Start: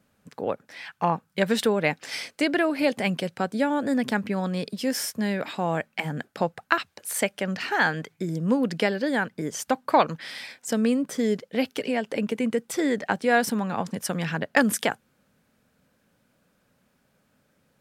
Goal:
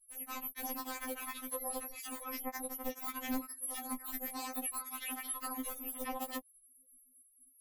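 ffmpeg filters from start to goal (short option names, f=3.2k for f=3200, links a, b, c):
-af "afftfilt=real='real(if(lt(b,272),68*(eq(floor(b/68),0)*1+eq(floor(b/68),1)*2+eq(floor(b/68),2)*3+eq(floor(b/68),3)*0)+mod(b,68),b),0)':imag='imag(if(lt(b,272),68*(eq(floor(b/68),0)*1+eq(floor(b/68),1)*2+eq(floor(b/68),2)*3+eq(floor(b/68),3)*0)+mod(b,68),b),0)':win_size=2048:overlap=0.75,deesser=0.95,aeval=exprs='(mod(11.2*val(0)+1,2)-1)/11.2':c=same,acompressor=threshold=-44dB:ratio=12,afftfilt=real='re*gte(hypot(re,im),0.00141)':imag='im*gte(hypot(re,im),0.00141)':win_size=1024:overlap=0.75,asoftclip=type=tanh:threshold=-29.5dB,equalizer=f=2.3k:w=0.51:g=-6.5,flanger=delay=17.5:depth=2.7:speed=0.48,equalizer=f=200:t=o:w=0.33:g=-5,equalizer=f=630:t=o:w=0.33:g=-9,equalizer=f=1.6k:t=o:w=0.33:g=-4,equalizer=f=4k:t=o:w=0.33:g=-6,asetrate=103194,aresample=44100,afftfilt=real='re*3.46*eq(mod(b,12),0)':imag='im*3.46*eq(mod(b,12),0)':win_size=2048:overlap=0.75,volume=17.5dB"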